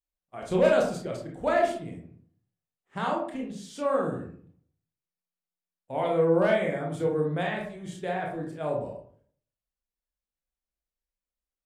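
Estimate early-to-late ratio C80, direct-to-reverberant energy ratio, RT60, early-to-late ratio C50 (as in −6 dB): 9.5 dB, −1.5 dB, 0.50 s, 4.5 dB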